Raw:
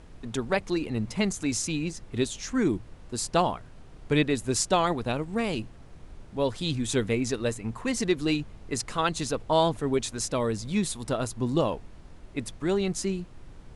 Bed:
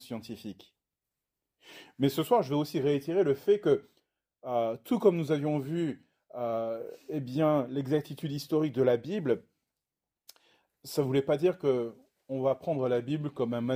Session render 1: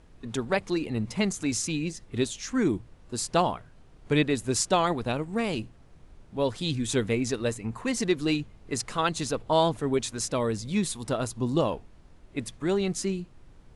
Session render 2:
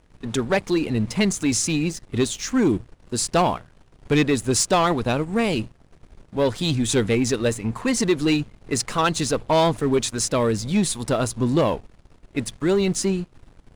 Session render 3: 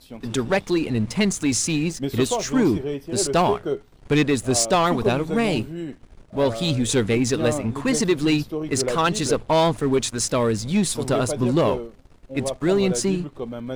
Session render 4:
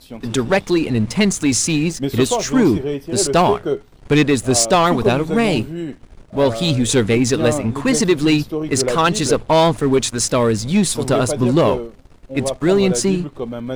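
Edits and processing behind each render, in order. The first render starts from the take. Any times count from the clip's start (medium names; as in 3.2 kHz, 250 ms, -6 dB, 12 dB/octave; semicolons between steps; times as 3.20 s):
noise print and reduce 6 dB
waveshaping leveller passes 2
add bed -0.5 dB
trim +5 dB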